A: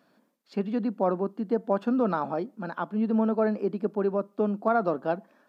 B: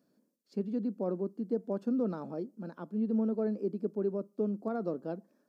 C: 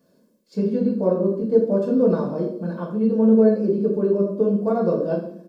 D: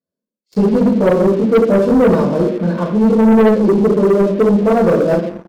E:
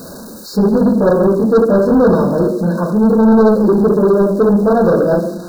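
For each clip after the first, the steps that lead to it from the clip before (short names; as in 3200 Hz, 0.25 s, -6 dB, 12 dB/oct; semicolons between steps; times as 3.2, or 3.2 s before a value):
band shelf 1600 Hz -12.5 dB 2.8 oct; gain -5 dB
comb 1.9 ms, depth 49%; reverb RT60 0.65 s, pre-delay 3 ms, DRR -4 dB; gain +6 dB
spectral noise reduction 20 dB; sample leveller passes 3
zero-crossing step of -24.5 dBFS; FFT band-reject 1700–3700 Hz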